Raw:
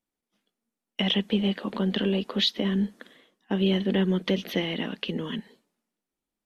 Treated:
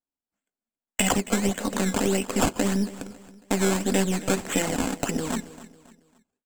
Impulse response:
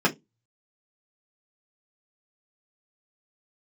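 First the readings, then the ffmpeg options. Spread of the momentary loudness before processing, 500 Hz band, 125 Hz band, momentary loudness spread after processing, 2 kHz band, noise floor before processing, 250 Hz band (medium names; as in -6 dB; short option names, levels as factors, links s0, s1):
8 LU, +2.5 dB, 0.0 dB, 8 LU, +4.5 dB, under -85 dBFS, +0.5 dB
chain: -filter_complex "[0:a]agate=range=0.126:threshold=0.00224:ratio=16:detection=peak,acrusher=samples=16:mix=1:aa=0.000001:lfo=1:lforange=16:lforate=1.7,acompressor=threshold=0.0282:ratio=1.5,equalizer=f=7600:t=o:w=0.32:g=15,aeval=exprs='0.211*(cos(1*acos(clip(val(0)/0.211,-1,1)))-cos(1*PI/2))+0.0168*(cos(6*acos(clip(val(0)/0.211,-1,1)))-cos(6*PI/2))':c=same,aecho=1:1:275|550|825:0.141|0.0551|0.0215,asplit=2[s0][s1];[1:a]atrim=start_sample=2205,asetrate=70560,aresample=44100[s2];[s1][s2]afir=irnorm=-1:irlink=0,volume=0.0794[s3];[s0][s3]amix=inputs=2:normalize=0,volume=1.68"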